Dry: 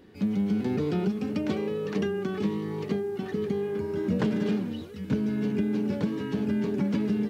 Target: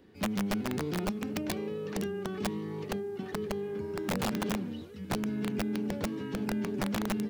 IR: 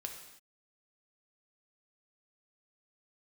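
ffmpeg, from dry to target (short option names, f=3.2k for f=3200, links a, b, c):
-filter_complex "[0:a]acrossover=split=290|3000[a][b][c];[b]acompressor=threshold=-30dB:ratio=4[d];[a][d][c]amix=inputs=3:normalize=0,aeval=exprs='(mod(9.44*val(0)+1,2)-1)/9.44':c=same,volume=-5dB"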